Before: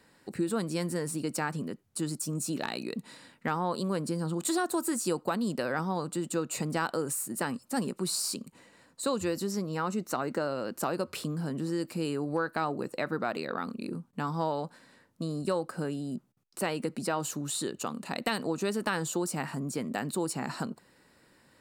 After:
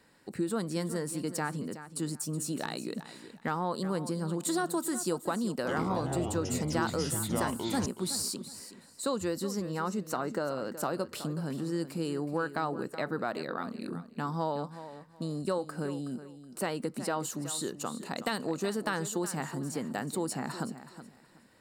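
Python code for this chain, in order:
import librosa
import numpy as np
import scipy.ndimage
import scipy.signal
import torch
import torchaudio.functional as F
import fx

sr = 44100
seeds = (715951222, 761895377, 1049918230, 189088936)

y = fx.dynamic_eq(x, sr, hz=2500.0, q=4.1, threshold_db=-56.0, ratio=4.0, max_db=-6)
y = fx.echo_pitch(y, sr, ms=88, semitones=-6, count=2, db_per_echo=-3.0, at=(5.56, 7.86))
y = fx.echo_feedback(y, sr, ms=372, feedback_pct=22, wet_db=-13)
y = F.gain(torch.from_numpy(y), -1.5).numpy()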